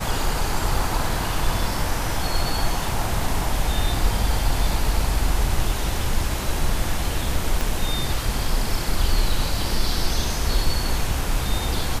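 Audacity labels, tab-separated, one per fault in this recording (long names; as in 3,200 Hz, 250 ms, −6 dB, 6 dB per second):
7.610000	7.610000	click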